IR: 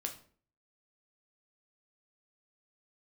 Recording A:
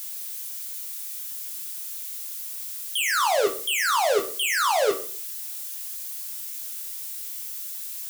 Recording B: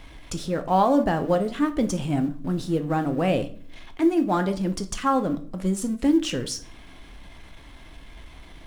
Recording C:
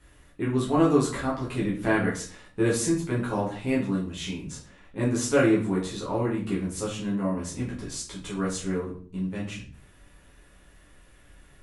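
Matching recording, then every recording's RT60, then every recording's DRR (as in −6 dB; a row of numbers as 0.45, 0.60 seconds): A; 0.50, 0.50, 0.50 seconds; 3.0, 7.5, −6.5 decibels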